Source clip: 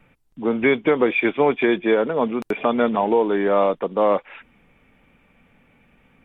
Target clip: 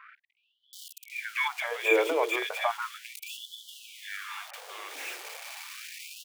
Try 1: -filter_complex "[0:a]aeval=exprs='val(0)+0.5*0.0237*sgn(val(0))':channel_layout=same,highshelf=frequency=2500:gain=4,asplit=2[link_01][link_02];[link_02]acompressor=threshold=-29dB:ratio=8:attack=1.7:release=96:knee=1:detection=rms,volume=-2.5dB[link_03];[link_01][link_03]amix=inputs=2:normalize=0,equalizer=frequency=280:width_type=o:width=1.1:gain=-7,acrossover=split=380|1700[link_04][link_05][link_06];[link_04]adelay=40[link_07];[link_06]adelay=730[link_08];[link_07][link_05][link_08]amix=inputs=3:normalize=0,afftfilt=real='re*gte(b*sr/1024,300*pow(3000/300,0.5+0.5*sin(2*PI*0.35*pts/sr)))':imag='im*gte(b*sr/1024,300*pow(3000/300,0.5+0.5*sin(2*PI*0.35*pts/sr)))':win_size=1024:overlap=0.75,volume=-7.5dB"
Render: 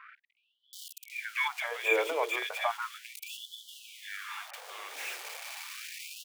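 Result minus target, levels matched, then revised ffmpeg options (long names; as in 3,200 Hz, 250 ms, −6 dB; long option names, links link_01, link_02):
downward compressor: peak gain reduction +9.5 dB; 250 Hz band −6.5 dB
-filter_complex "[0:a]aeval=exprs='val(0)+0.5*0.0237*sgn(val(0))':channel_layout=same,highshelf=frequency=2500:gain=4,asplit=2[link_01][link_02];[link_02]acompressor=threshold=-18dB:ratio=8:attack=1.7:release=96:knee=1:detection=rms,volume=-2.5dB[link_03];[link_01][link_03]amix=inputs=2:normalize=0,equalizer=frequency=280:width_type=o:width=1.1:gain=2,acrossover=split=380|1700[link_04][link_05][link_06];[link_04]adelay=40[link_07];[link_06]adelay=730[link_08];[link_07][link_05][link_08]amix=inputs=3:normalize=0,afftfilt=real='re*gte(b*sr/1024,300*pow(3000/300,0.5+0.5*sin(2*PI*0.35*pts/sr)))':imag='im*gte(b*sr/1024,300*pow(3000/300,0.5+0.5*sin(2*PI*0.35*pts/sr)))':win_size=1024:overlap=0.75,volume=-7.5dB"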